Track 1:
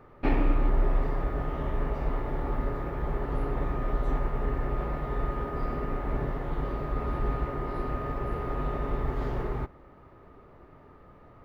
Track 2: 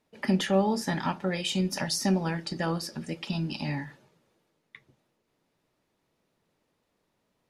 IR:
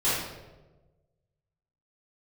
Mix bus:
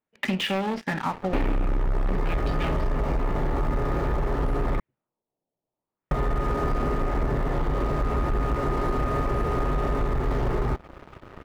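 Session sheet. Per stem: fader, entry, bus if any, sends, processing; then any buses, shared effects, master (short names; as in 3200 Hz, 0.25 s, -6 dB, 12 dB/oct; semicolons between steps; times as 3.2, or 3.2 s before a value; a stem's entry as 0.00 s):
+3.0 dB, 1.10 s, muted 4.8–6.11, no send, dry
-9.0 dB, 0.00 s, no send, self-modulated delay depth 0.3 ms; resonant high shelf 2200 Hz +6 dB, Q 1.5; LFO low-pass sine 0.5 Hz 690–2700 Hz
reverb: off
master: sample leveller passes 3; compressor, threshold -22 dBFS, peak gain reduction 10 dB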